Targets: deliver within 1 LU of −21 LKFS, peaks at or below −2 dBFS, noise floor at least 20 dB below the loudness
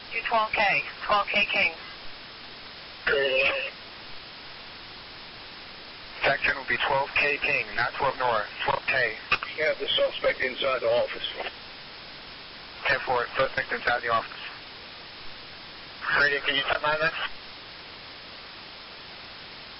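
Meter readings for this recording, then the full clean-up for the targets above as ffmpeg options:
background noise floor −43 dBFS; target noise floor −46 dBFS; integrated loudness −25.5 LKFS; sample peak −10.5 dBFS; target loudness −21.0 LKFS
→ -af "afftdn=noise_reduction=6:noise_floor=-43"
-af "volume=4.5dB"

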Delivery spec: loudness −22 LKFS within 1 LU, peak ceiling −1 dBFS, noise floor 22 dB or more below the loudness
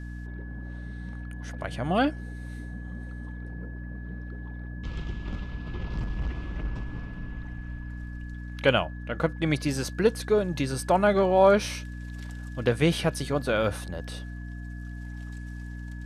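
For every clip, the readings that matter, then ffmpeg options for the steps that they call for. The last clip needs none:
mains hum 60 Hz; hum harmonics up to 300 Hz; level of the hum −35 dBFS; interfering tone 1,700 Hz; level of the tone −48 dBFS; integrated loudness −29.0 LKFS; sample peak −8.0 dBFS; target loudness −22.0 LKFS
→ -af "bandreject=frequency=60:width_type=h:width=6,bandreject=frequency=120:width_type=h:width=6,bandreject=frequency=180:width_type=h:width=6,bandreject=frequency=240:width_type=h:width=6,bandreject=frequency=300:width_type=h:width=6"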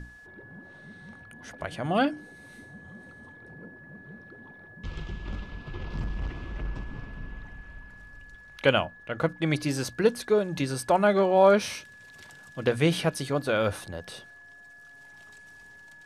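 mains hum none found; interfering tone 1,700 Hz; level of the tone −48 dBFS
→ -af "bandreject=frequency=1700:width=30"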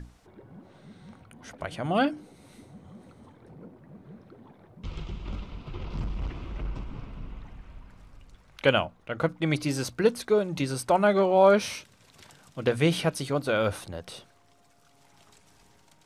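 interfering tone none found; integrated loudness −27.0 LKFS; sample peak −8.5 dBFS; target loudness −22.0 LKFS
→ -af "volume=5dB"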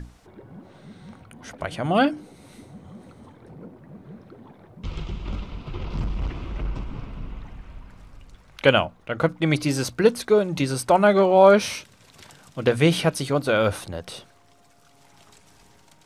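integrated loudness −22.0 LKFS; sample peak −3.5 dBFS; background noise floor −55 dBFS

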